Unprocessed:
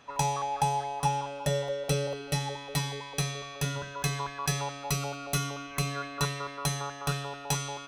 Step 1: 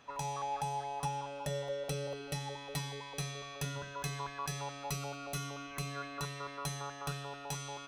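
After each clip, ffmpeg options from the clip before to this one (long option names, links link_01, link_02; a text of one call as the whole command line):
ffmpeg -i in.wav -af "alimiter=limit=-22dB:level=0:latency=1:release=347,volume=-4dB" out.wav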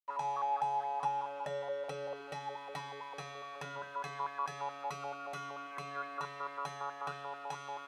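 ffmpeg -i in.wav -af "aeval=exprs='val(0)*gte(abs(val(0)),0.00282)':channel_layout=same,bandpass=frequency=990:width_type=q:width=1.1:csg=0,volume=4.5dB" out.wav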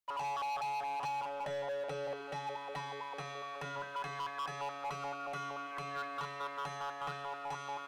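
ffmpeg -i in.wav -filter_complex "[0:a]acrossover=split=120|3000[link_01][link_02][link_03];[link_02]asoftclip=type=hard:threshold=-38dB[link_04];[link_03]alimiter=level_in=26dB:limit=-24dB:level=0:latency=1,volume=-26dB[link_05];[link_01][link_04][link_05]amix=inputs=3:normalize=0,volume=2.5dB" out.wav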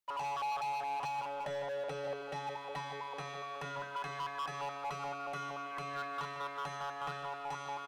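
ffmpeg -i in.wav -filter_complex "[0:a]asplit=2[link_01][link_02];[link_02]adelay=151.6,volume=-12dB,highshelf=frequency=4000:gain=-3.41[link_03];[link_01][link_03]amix=inputs=2:normalize=0" out.wav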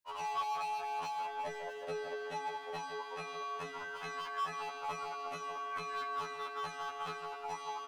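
ffmpeg -i in.wav -af "afftfilt=real='re*2*eq(mod(b,4),0)':imag='im*2*eq(mod(b,4),0)':win_size=2048:overlap=0.75,volume=3dB" out.wav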